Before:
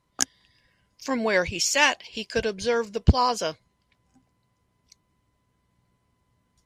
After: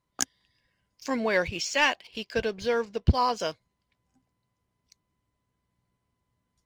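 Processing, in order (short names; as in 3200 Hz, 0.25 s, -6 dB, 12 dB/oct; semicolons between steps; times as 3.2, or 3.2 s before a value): 1.2–3.4 LPF 4700 Hz 12 dB/oct; sample leveller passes 1; gain -6 dB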